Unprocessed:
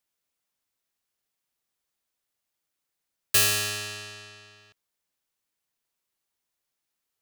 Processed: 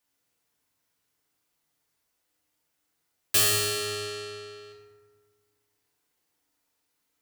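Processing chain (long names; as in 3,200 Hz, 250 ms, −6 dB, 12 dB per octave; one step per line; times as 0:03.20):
mains-hum notches 60/120 Hz
in parallel at +1.5 dB: downward compressor, threshold −36 dBFS, peak gain reduction 18 dB
on the sum: feedback delay network reverb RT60 1.6 s, low-frequency decay 1.3×, high-frequency decay 0.45×, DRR −4 dB
level −5 dB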